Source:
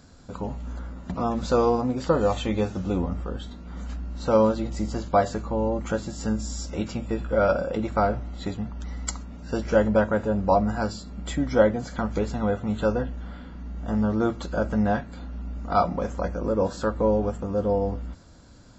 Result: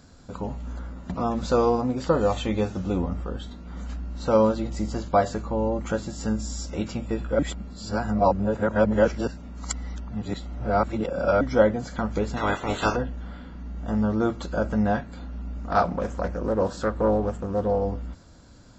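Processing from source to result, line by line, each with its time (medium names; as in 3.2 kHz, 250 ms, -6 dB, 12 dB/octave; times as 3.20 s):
7.39–11.41 s: reverse
12.36–12.95 s: spectral peaks clipped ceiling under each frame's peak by 25 dB
15.59–17.85 s: loudspeaker Doppler distortion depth 0.35 ms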